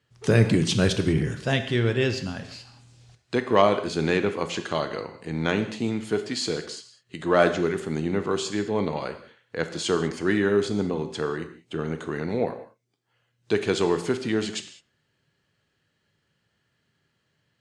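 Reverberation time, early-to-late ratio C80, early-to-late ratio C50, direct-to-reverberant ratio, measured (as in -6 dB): not exponential, 13.0 dB, 11.0 dB, 8.5 dB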